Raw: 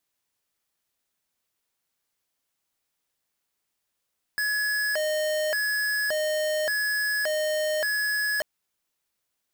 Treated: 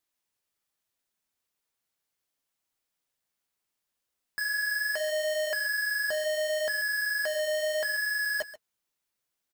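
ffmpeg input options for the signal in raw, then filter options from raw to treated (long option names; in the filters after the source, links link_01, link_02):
-f lavfi -i "aevalsrc='0.0501*(2*lt(mod((1152.5*t+537.5/0.87*(0.5-abs(mod(0.87*t,1)-0.5))),1),0.5)-1)':duration=4.04:sample_rate=44100"
-af "flanger=delay=2.2:depth=9.4:regen=-52:speed=0.73:shape=triangular,aecho=1:1:135:0.168"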